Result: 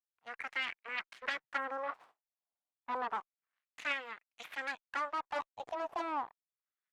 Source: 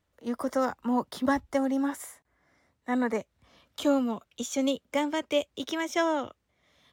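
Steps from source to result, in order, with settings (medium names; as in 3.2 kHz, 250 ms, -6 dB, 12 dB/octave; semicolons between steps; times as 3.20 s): Chebyshev shaper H 3 -10 dB, 7 -39 dB, 8 -12 dB, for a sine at -14 dBFS; LFO band-pass sine 0.3 Hz 770–2300 Hz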